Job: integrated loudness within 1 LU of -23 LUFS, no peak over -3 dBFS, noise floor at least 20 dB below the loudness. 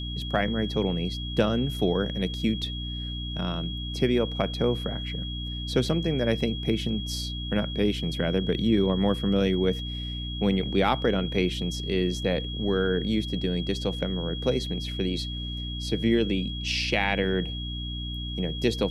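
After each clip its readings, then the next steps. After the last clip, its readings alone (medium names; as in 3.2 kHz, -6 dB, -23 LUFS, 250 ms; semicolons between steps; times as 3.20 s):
hum 60 Hz; highest harmonic 300 Hz; hum level -31 dBFS; steady tone 3.3 kHz; tone level -36 dBFS; loudness -27.0 LUFS; peak level -8.0 dBFS; loudness target -23.0 LUFS
-> de-hum 60 Hz, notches 5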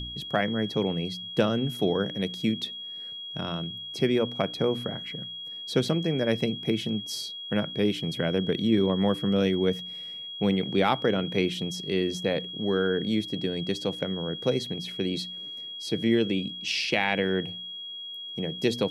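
hum not found; steady tone 3.3 kHz; tone level -36 dBFS
-> band-stop 3.3 kHz, Q 30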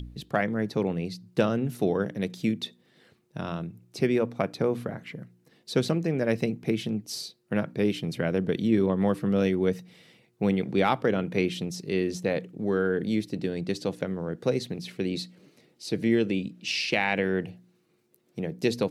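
steady tone not found; loudness -28.0 LUFS; peak level -9.5 dBFS; loudness target -23.0 LUFS
-> trim +5 dB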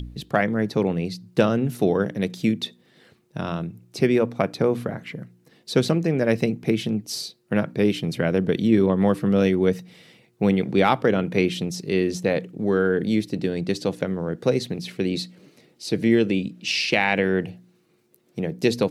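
loudness -23.0 LUFS; peak level -4.5 dBFS; noise floor -62 dBFS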